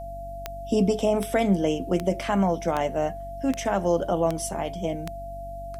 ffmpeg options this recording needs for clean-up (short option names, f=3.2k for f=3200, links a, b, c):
-af "adeclick=t=4,bandreject=f=47.7:t=h:w=4,bandreject=f=95.4:t=h:w=4,bandreject=f=143.1:t=h:w=4,bandreject=f=190.8:t=h:w=4,bandreject=f=238.5:t=h:w=4,bandreject=f=286.2:t=h:w=4,bandreject=f=680:w=30,agate=range=-21dB:threshold=-28dB"